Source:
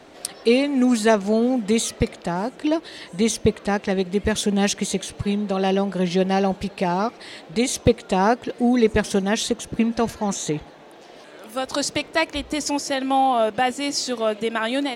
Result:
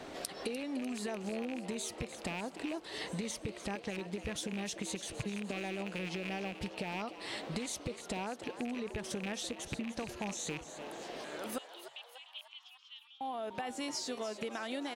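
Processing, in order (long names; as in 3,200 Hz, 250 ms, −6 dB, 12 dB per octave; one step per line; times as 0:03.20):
loose part that buzzes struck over −27 dBFS, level −13 dBFS
brickwall limiter −13.5 dBFS, peak gain reduction 9.5 dB
downward compressor 12 to 1, threshold −36 dBFS, peak gain reduction 18.5 dB
0:11.58–0:13.21: flat-topped band-pass 3,100 Hz, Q 3.9
echo with shifted repeats 298 ms, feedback 54%, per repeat +130 Hz, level −12 dB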